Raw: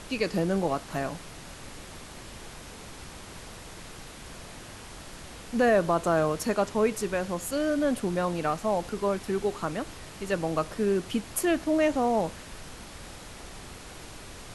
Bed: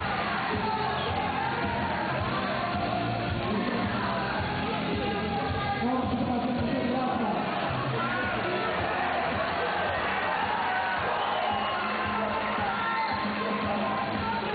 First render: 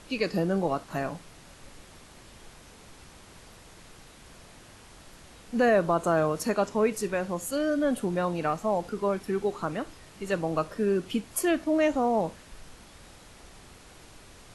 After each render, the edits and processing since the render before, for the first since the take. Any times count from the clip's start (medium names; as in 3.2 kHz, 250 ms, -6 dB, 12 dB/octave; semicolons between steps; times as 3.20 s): noise print and reduce 7 dB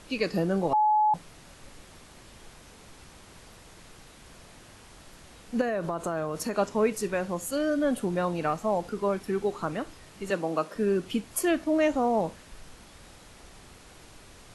0.73–1.14 s: bleep 852 Hz -19 dBFS; 5.61–6.55 s: compression, threshold -26 dBFS; 10.30–10.75 s: high-pass 180 Hz 24 dB/octave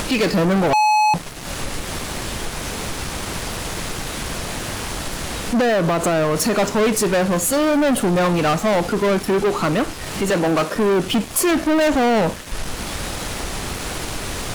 upward compressor, threshold -36 dBFS; waveshaping leveller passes 5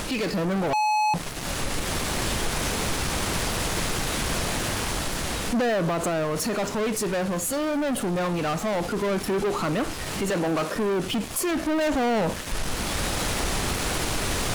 peak limiter -21 dBFS, peak gain reduction 7.5 dB; gain riding 2 s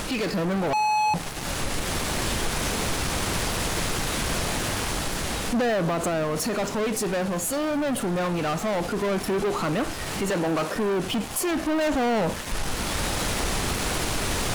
add bed -15 dB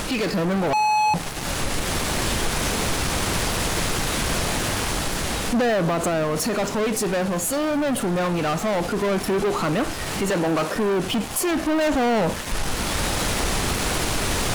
trim +3 dB